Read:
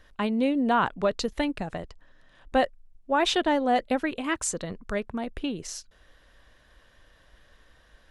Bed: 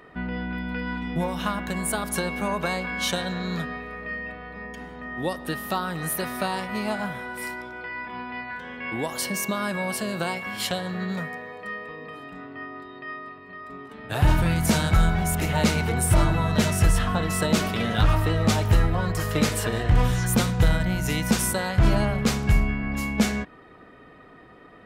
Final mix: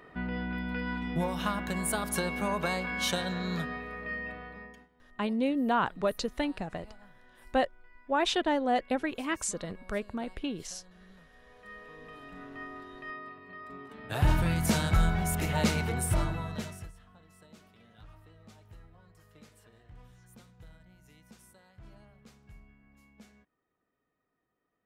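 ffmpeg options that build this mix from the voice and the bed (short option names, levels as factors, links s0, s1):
-filter_complex "[0:a]adelay=5000,volume=0.631[s0];[1:a]volume=7.94,afade=t=out:st=4.38:d=0.5:silence=0.0668344,afade=t=in:st=11.33:d=1.21:silence=0.0794328,afade=t=out:st=15.76:d=1.16:silence=0.0398107[s1];[s0][s1]amix=inputs=2:normalize=0"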